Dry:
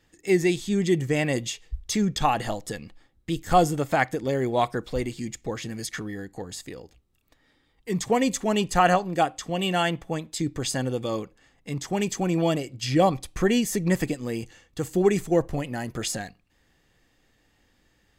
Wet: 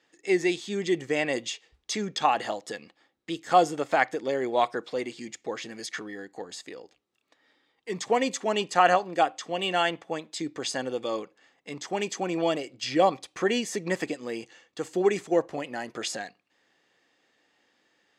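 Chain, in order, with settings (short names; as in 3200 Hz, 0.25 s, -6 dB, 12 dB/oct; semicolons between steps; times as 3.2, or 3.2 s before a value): BPF 350–6200 Hz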